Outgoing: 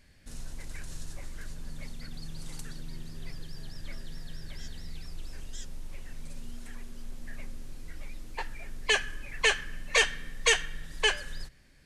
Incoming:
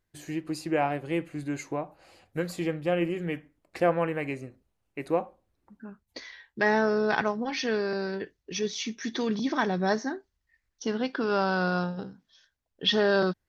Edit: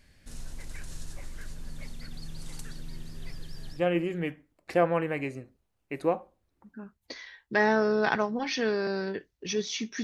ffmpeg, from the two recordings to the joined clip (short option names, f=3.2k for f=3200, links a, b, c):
-filter_complex "[0:a]apad=whole_dur=10.03,atrim=end=10.03,atrim=end=3.82,asetpts=PTS-STARTPTS[a];[1:a]atrim=start=2.78:end=9.09,asetpts=PTS-STARTPTS[b];[a][b]acrossfade=d=0.1:c1=tri:c2=tri"